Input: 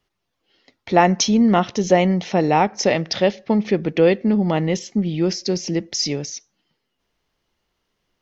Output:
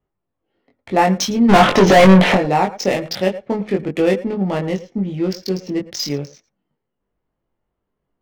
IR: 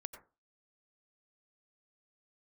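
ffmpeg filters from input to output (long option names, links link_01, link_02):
-filter_complex "[0:a]adynamicsmooth=sensitivity=3:basefreq=1200,asplit=3[link_01][link_02][link_03];[link_01]afade=type=out:start_time=1.48:duration=0.02[link_04];[link_02]asplit=2[link_05][link_06];[link_06]highpass=frequency=720:poles=1,volume=37dB,asoftclip=type=tanh:threshold=-2dB[link_07];[link_05][link_07]amix=inputs=2:normalize=0,lowpass=frequency=2700:poles=1,volume=-6dB,afade=type=in:start_time=1.48:duration=0.02,afade=type=out:start_time=2.34:duration=0.02[link_08];[link_03]afade=type=in:start_time=2.34:duration=0.02[link_09];[link_04][link_08][link_09]amix=inputs=3:normalize=0,asplit=2[link_10][link_11];[1:a]atrim=start_sample=2205,afade=type=out:start_time=0.14:duration=0.01,atrim=end_sample=6615,adelay=21[link_12];[link_11][link_12]afir=irnorm=-1:irlink=0,volume=1.5dB[link_13];[link_10][link_13]amix=inputs=2:normalize=0,volume=-2dB"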